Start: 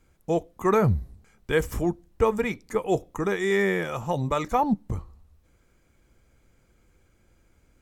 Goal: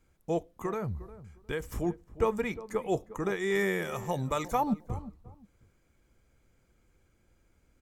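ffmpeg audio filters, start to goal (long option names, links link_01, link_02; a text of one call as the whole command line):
ffmpeg -i in.wav -filter_complex "[0:a]asettb=1/sr,asplit=3[link_01][link_02][link_03];[link_01]atrim=end=0.514[link_04];[link_02]atrim=start=0.51:end=1.76,asetpts=PTS-STARTPTS,afade=type=in:duration=0.004:curve=qsin,afade=type=out:start_time=1.246:duration=0.004:curve=qsin,acompressor=threshold=-25dB:ratio=6[link_05];[link_03]atrim=start=1.756[link_06];[link_04][link_05]acrossfade=duration=0.004:curve1=hsin:curve2=qsin[link_07];[link_07][link_06]acrossfade=duration=0.004:curve1=qsin:curve2=hsin,asettb=1/sr,asplit=3[link_08][link_09][link_10];[link_08]atrim=end=3.554[link_11];[link_09]atrim=start=3.55:end=4.89,asetpts=PTS-STARTPTS,afade=type=in:duration=0.004:curve=qsin,afade=type=out:start_time=1.336:duration=0.004:curve=qsin,highshelf=frequency=6300:gain=11[link_12];[link_10]atrim=start=4.886[link_13];[link_11][link_12]acrossfade=duration=0.004:curve1=hsin:curve2=qsin[link_14];[link_14][link_13]acrossfade=duration=0.004:curve1=qsin:curve2=hsin,asplit=2[link_15][link_16];[link_16]adelay=356,lowpass=frequency=1000:poles=1,volume=-15dB,asplit=2[link_17][link_18];[link_18]adelay=356,lowpass=frequency=1000:poles=1,volume=0.23[link_19];[link_15][link_17][link_19]amix=inputs=3:normalize=0,volume=-5.5dB" out.wav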